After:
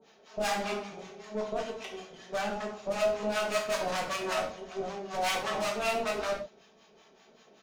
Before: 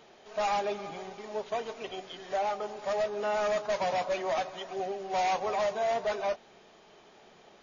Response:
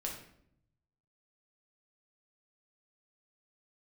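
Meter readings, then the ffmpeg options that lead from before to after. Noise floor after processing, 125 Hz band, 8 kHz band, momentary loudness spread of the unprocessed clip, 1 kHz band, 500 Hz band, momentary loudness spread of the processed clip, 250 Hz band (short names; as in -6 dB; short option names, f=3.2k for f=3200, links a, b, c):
-61 dBFS, +4.0 dB, n/a, 10 LU, -3.0 dB, -1.5 dB, 11 LU, +4.5 dB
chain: -filter_complex "[0:a]asplit=2[a][b];[b]acrusher=bits=4:mix=0:aa=0.5,volume=-11.5dB[c];[a][c]amix=inputs=2:normalize=0,aecho=1:1:4.5:0.39,acrossover=split=200[d][e];[e]aeval=exprs='0.158*(cos(1*acos(clip(val(0)/0.158,-1,1)))-cos(1*PI/2))+0.0316*(cos(6*acos(clip(val(0)/0.158,-1,1)))-cos(6*PI/2))':c=same[f];[d][f]amix=inputs=2:normalize=0,acrossover=split=750[g][h];[g]aeval=exprs='val(0)*(1-1/2+1/2*cos(2*PI*5.2*n/s))':c=same[i];[h]aeval=exprs='val(0)*(1-1/2-1/2*cos(2*PI*5.2*n/s))':c=same[j];[i][j]amix=inputs=2:normalize=0,crystalizer=i=1:c=0,highpass=f=97:p=1[k];[1:a]atrim=start_sample=2205,atrim=end_sample=6174[l];[k][l]afir=irnorm=-1:irlink=0"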